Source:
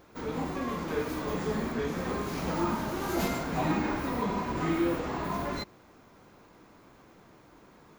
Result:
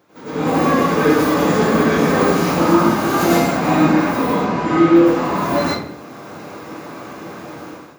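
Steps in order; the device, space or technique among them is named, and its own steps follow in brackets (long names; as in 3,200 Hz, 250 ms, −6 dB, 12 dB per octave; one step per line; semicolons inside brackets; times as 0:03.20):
0:04.34–0:04.96: high-frequency loss of the air 60 metres
far laptop microphone (convolution reverb RT60 0.60 s, pre-delay 89 ms, DRR −8.5 dB; high-pass filter 110 Hz 24 dB per octave; automatic gain control gain up to 15.5 dB)
level −1 dB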